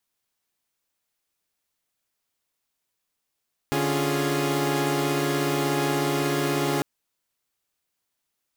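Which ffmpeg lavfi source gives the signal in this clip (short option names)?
-f lavfi -i "aevalsrc='0.0531*((2*mod(146.83*t,1)-1)+(2*mod(277.18*t,1)-1)+(2*mod(349.23*t,1)-1)+(2*mod(415.3*t,1)-1))':d=3.1:s=44100"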